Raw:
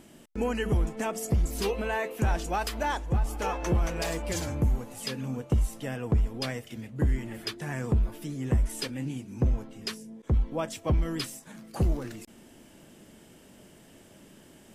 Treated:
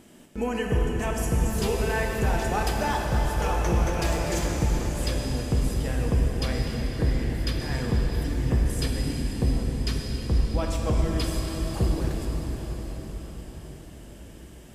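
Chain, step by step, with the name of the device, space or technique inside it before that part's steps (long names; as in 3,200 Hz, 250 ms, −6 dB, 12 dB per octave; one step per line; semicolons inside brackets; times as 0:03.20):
cathedral (convolution reverb RT60 5.9 s, pre-delay 7 ms, DRR −1 dB)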